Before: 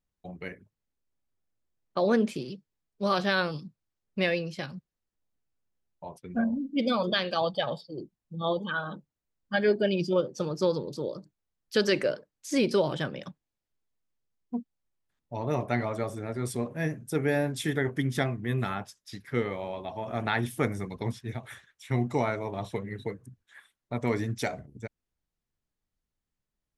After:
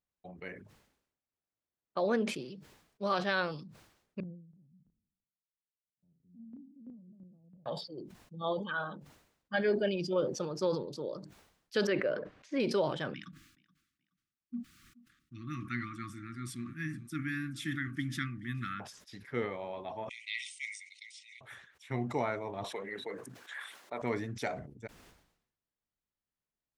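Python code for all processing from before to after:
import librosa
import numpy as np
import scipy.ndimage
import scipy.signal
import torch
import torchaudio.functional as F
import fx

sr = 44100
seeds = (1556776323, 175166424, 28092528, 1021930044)

y = fx.chain(x, sr, fx.spec_steps(hold_ms=50),
    fx.ladder_lowpass(hz=230.0, resonance_pct=45),
    fx.chopper(hz=3.0, depth_pct=65, duty_pct=10), at=(4.2, 7.66))
y = fx.chain(y, sr, fx.lowpass(hz=2500.0, slope=12),
    fx.notch(hz=870.0, q=7.7), at=(11.87, 12.6))
y = fx.chain(y, sr, fx.brickwall_bandstop(low_hz=350.0, high_hz=1100.0),
    fx.echo_feedback(ms=425, feedback_pct=23, wet_db=-22.0), at=(13.14, 18.8))
y = fx.chain(y, sr, fx.brickwall_bandpass(low_hz=1900.0, high_hz=9400.0),
    fx.tilt_eq(slope=2.5),
    fx.notch(hz=3400.0, q=19.0), at=(20.09, 21.41))
y = fx.chain(y, sr, fx.highpass(hz=420.0, slope=12),
    fx.env_flatten(amount_pct=70), at=(22.64, 24.02))
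y = fx.highpass(y, sr, hz=1300.0, slope=6)
y = fx.tilt_eq(y, sr, slope=-3.5)
y = fx.sustainer(y, sr, db_per_s=78.0)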